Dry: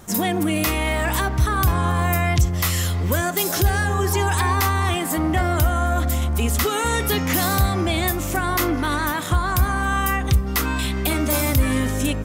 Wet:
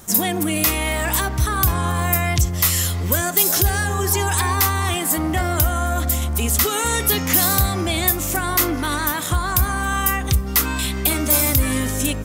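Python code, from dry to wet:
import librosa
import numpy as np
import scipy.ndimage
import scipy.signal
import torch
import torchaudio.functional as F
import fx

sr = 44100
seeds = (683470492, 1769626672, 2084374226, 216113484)

y = fx.high_shelf(x, sr, hz=4700.0, db=10.0)
y = y * librosa.db_to_amplitude(-1.0)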